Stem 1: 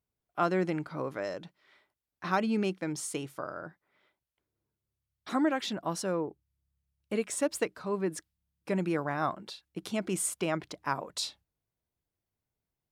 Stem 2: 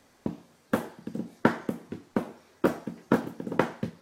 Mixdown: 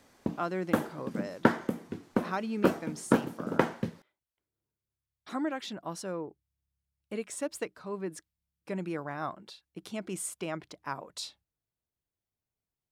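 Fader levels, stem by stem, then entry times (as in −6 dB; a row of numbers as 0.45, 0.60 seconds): −5.0, −0.5 decibels; 0.00, 0.00 seconds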